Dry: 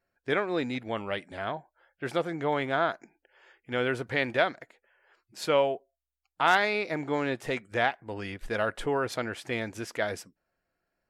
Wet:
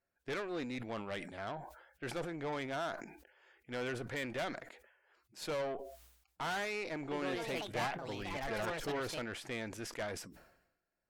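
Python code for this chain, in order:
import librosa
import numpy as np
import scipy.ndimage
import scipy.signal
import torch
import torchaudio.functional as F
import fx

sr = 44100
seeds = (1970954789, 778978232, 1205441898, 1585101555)

y = fx.tube_stage(x, sr, drive_db=28.0, bias=0.5)
y = fx.echo_pitch(y, sr, ms=161, semitones=4, count=2, db_per_echo=-3.0, at=(6.95, 9.57))
y = fx.sustainer(y, sr, db_per_s=68.0)
y = F.gain(torch.from_numpy(y), -5.5).numpy()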